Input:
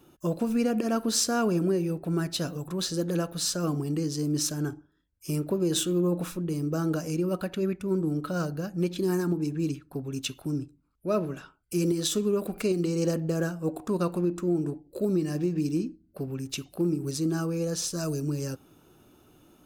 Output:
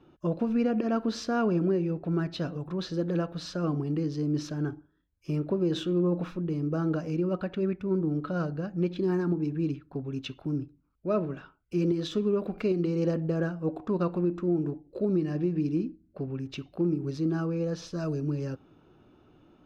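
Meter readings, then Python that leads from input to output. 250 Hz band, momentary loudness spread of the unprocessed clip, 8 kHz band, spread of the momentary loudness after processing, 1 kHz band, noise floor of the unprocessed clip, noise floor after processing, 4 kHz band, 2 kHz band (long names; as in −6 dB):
−0.5 dB, 8 LU, below −15 dB, 8 LU, −1.0 dB, −63 dBFS, −64 dBFS, −8.5 dB, −2.0 dB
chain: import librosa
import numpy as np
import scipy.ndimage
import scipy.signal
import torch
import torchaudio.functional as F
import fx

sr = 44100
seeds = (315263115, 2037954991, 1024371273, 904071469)

y = fx.air_absorb(x, sr, metres=260.0)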